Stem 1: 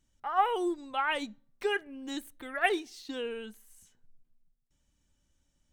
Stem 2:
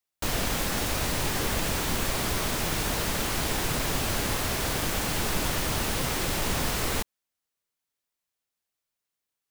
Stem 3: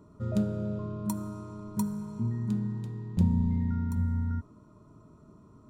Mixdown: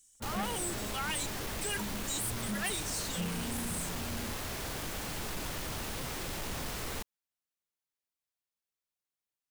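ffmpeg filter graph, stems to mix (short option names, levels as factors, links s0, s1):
-filter_complex "[0:a]crystalizer=i=9:c=0,equalizer=f=8400:w=1.3:g=13.5,volume=0.335[s0];[1:a]volume=0.376[s1];[2:a]highpass=170,aeval=exprs='sgn(val(0))*max(abs(val(0))-0.00398,0)':c=same,asplit=2[s2][s3];[s3]adelay=3.6,afreqshift=-1.8[s4];[s2][s4]amix=inputs=2:normalize=1,volume=0.944[s5];[s0][s1][s5]amix=inputs=3:normalize=0,asoftclip=type=tanh:threshold=0.0299"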